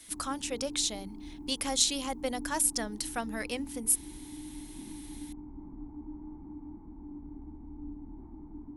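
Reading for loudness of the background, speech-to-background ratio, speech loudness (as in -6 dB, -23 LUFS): -45.5 LUFS, 15.0 dB, -30.5 LUFS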